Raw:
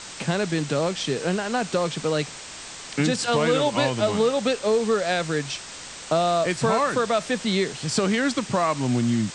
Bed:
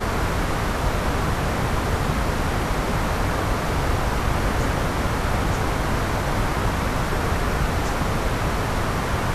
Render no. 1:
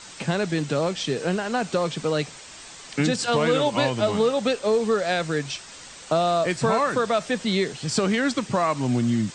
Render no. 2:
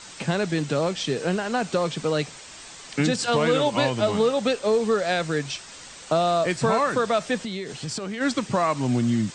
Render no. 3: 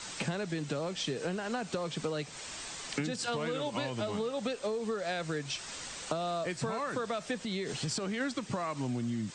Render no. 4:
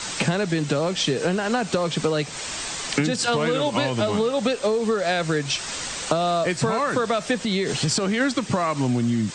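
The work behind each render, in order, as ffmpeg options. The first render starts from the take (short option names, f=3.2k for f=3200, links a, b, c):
-af "afftdn=nr=6:nf=-39"
-filter_complex "[0:a]asplit=3[a][b][c];[a]afade=t=out:st=7.42:d=0.02[d];[b]acompressor=threshold=-27dB:ratio=12:attack=3.2:release=140:knee=1:detection=peak,afade=t=in:st=7.42:d=0.02,afade=t=out:st=8.2:d=0.02[e];[c]afade=t=in:st=8.2:d=0.02[f];[d][e][f]amix=inputs=3:normalize=0"
-filter_complex "[0:a]acrossover=split=550|1000[a][b][c];[b]alimiter=level_in=2dB:limit=-24dB:level=0:latency=1,volume=-2dB[d];[a][d][c]amix=inputs=3:normalize=0,acompressor=threshold=-31dB:ratio=10"
-af "volume=12dB"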